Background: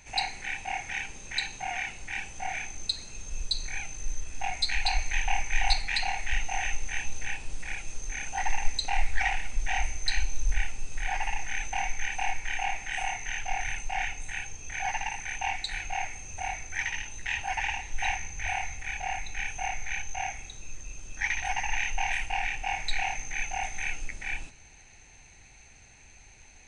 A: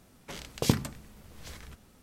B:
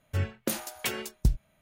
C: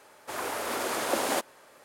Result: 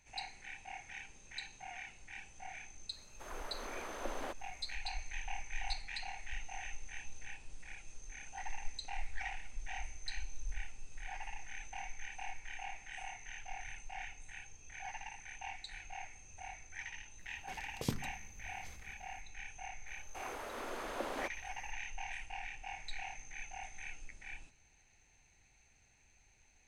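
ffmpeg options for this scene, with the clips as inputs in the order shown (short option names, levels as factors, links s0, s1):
-filter_complex "[3:a]asplit=2[s0][s1];[0:a]volume=0.188[s2];[s0]acrossover=split=3600[s3][s4];[s4]acompressor=threshold=0.00398:ratio=4:attack=1:release=60[s5];[s3][s5]amix=inputs=2:normalize=0[s6];[s1]acrossover=split=3800[s7][s8];[s8]acompressor=threshold=0.00398:ratio=4:attack=1:release=60[s9];[s7][s9]amix=inputs=2:normalize=0[s10];[s6]atrim=end=1.84,asetpts=PTS-STARTPTS,volume=0.2,afade=t=in:d=0.004:c=hsin,afade=t=out:st=1.836:d=0.004:c=hsin,adelay=2920[s11];[1:a]atrim=end=2.02,asetpts=PTS-STARTPTS,volume=0.251,afade=t=in:d=0.004:c=hsin,afade=t=out:st=2.016:d=0.004:c=hsin,adelay=17190[s12];[s10]atrim=end=1.84,asetpts=PTS-STARTPTS,volume=0.266,afade=t=in:d=0.004:c=hsin,afade=t=out:st=1.836:d=0.004:c=hsin,adelay=19870[s13];[s2][s11][s12][s13]amix=inputs=4:normalize=0"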